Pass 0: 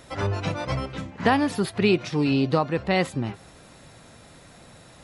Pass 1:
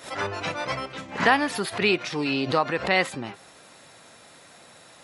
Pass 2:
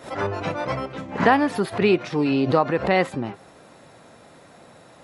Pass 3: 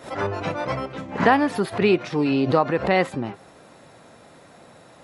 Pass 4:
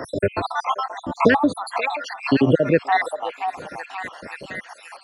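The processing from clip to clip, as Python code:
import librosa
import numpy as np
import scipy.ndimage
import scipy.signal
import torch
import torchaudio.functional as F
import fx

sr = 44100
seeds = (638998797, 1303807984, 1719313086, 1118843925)

y1 = fx.highpass(x, sr, hz=580.0, slope=6)
y1 = fx.dynamic_eq(y1, sr, hz=1800.0, q=1.2, threshold_db=-38.0, ratio=4.0, max_db=4)
y1 = fx.pre_swell(y1, sr, db_per_s=140.0)
y1 = F.gain(torch.from_numpy(y1), 2.0).numpy()
y2 = fx.tilt_shelf(y1, sr, db=7.0, hz=1400.0)
y3 = y2
y4 = fx.spec_dropout(y3, sr, seeds[0], share_pct=74)
y4 = fx.echo_stepped(y4, sr, ms=529, hz=820.0, octaves=0.7, feedback_pct=70, wet_db=-9.5)
y4 = fx.band_squash(y4, sr, depth_pct=40)
y4 = F.gain(torch.from_numpy(y4), 7.5).numpy()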